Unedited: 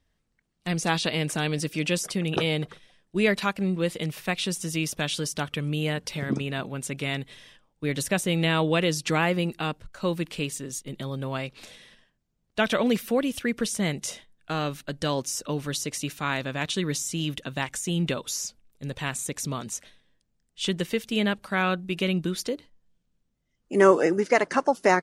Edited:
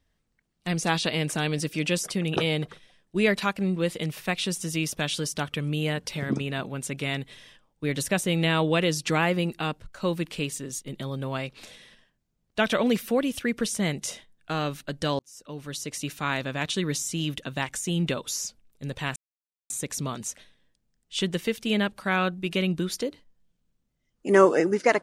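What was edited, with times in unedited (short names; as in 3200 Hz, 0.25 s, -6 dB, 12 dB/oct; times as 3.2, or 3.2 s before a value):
15.19–16.17 fade in
19.16 insert silence 0.54 s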